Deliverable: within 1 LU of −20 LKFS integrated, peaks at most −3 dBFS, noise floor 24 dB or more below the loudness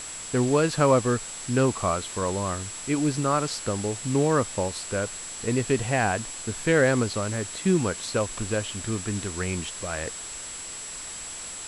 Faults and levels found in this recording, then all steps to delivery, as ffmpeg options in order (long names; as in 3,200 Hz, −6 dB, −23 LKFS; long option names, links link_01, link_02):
interfering tone 7,700 Hz; level of the tone −37 dBFS; background noise floor −38 dBFS; target noise floor −51 dBFS; integrated loudness −26.5 LKFS; sample peak −7.5 dBFS; target loudness −20.0 LKFS
→ -af "bandreject=frequency=7700:width=30"
-af "afftdn=noise_reduction=13:noise_floor=-38"
-af "volume=6.5dB,alimiter=limit=-3dB:level=0:latency=1"